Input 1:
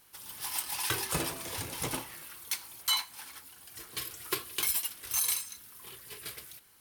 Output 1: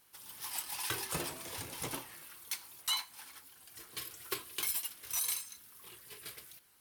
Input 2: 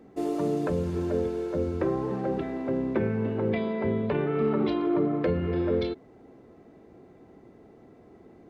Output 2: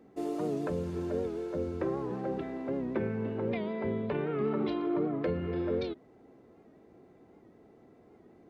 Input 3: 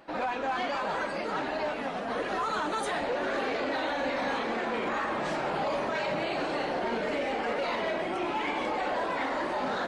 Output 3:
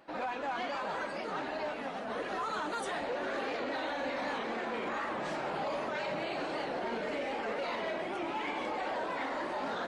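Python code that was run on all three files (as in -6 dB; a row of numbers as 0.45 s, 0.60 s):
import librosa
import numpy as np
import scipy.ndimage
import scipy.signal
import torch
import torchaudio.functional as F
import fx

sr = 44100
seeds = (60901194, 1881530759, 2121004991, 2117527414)

y = fx.low_shelf(x, sr, hz=86.0, db=-5.0)
y = fx.record_warp(y, sr, rpm=78.0, depth_cents=100.0)
y = y * librosa.db_to_amplitude(-5.0)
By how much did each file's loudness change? -5.0 LU, -5.5 LU, -5.0 LU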